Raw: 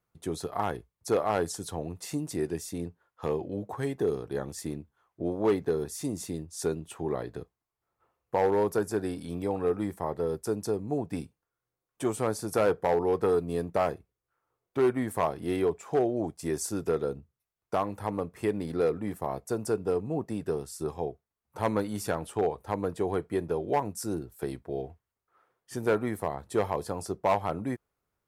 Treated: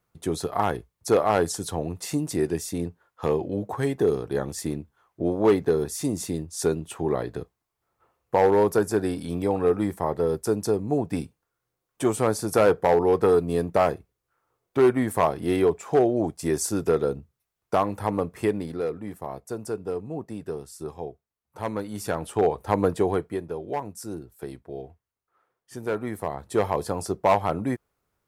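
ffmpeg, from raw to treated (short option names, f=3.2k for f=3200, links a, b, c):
-af "volume=25dB,afade=t=out:st=18.38:d=0.41:silence=0.398107,afade=t=in:st=21.85:d=1:silence=0.281838,afade=t=out:st=22.85:d=0.57:silence=0.266073,afade=t=in:st=25.88:d=0.94:silence=0.398107"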